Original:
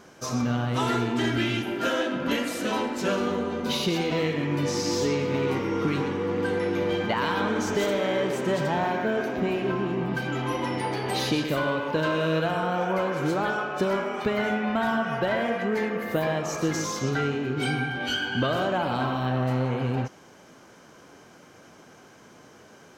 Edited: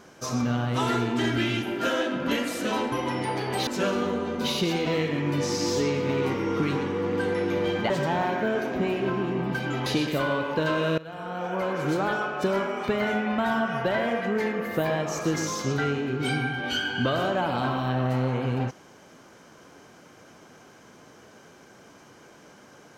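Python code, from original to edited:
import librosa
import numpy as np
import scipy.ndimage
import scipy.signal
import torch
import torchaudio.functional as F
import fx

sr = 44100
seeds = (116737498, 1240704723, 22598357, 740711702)

y = fx.edit(x, sr, fx.cut(start_s=7.15, length_s=1.37),
    fx.move(start_s=10.48, length_s=0.75, to_s=2.92),
    fx.fade_in_from(start_s=12.35, length_s=0.86, floor_db=-21.0), tone=tone)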